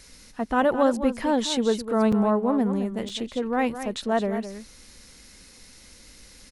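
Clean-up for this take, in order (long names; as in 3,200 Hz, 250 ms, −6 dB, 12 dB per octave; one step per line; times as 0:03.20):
repair the gap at 0:02.12/0:03.09, 5.3 ms
echo removal 211 ms −10.5 dB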